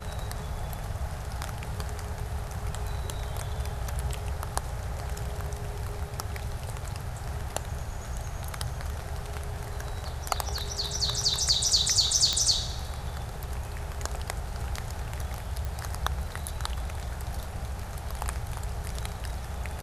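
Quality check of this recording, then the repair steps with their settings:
12.33 pop -11 dBFS
15.65 pop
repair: de-click

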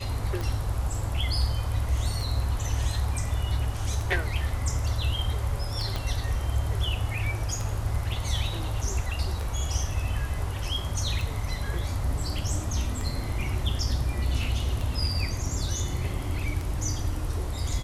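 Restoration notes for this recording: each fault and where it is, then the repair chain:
tick 33 1/3 rpm
5.96 pop -16 dBFS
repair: de-click

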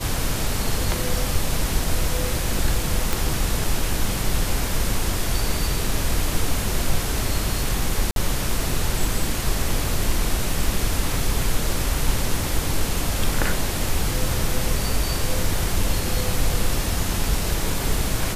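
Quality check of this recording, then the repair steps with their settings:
3.13 pop
8.11–8.16 gap 52 ms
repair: de-click; interpolate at 8.11, 52 ms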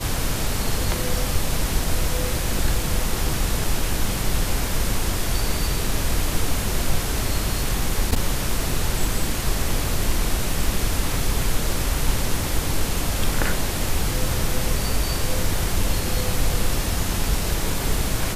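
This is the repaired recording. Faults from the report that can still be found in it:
none

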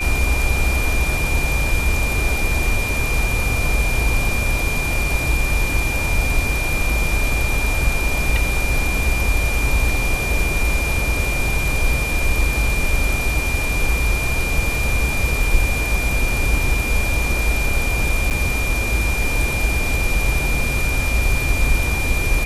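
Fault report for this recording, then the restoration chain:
tone 2400 Hz -23 dBFS
18.3–18.31 gap 8.4 ms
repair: notch 2400 Hz, Q 30; interpolate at 18.3, 8.4 ms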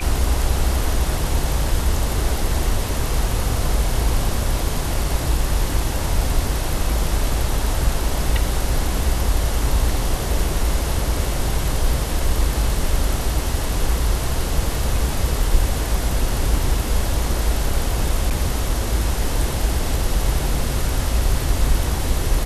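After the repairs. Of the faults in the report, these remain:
none

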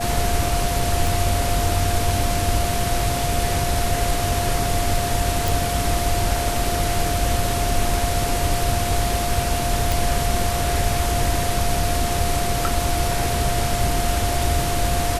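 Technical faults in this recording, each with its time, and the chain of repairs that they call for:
tone 700 Hz -25 dBFS
1.07 pop
5.48 pop
9.92 pop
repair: de-click; notch 700 Hz, Q 30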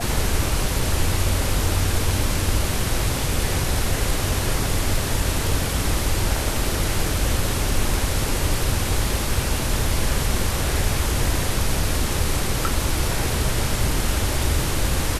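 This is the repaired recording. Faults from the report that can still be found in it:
none

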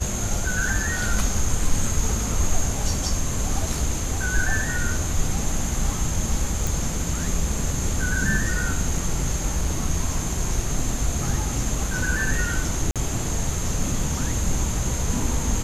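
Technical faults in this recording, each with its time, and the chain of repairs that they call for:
6.67 pop
12.91–12.96 gap 47 ms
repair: de-click; interpolate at 12.91, 47 ms

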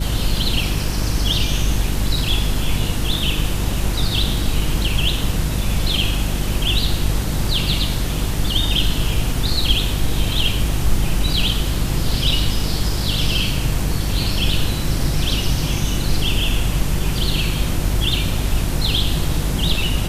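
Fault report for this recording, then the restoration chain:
hum 50 Hz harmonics 7 -23 dBFS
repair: de-hum 50 Hz, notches 7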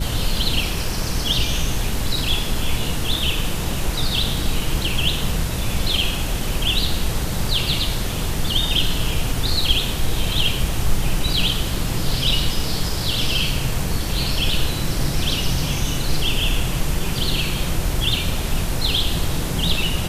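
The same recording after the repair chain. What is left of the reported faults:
none

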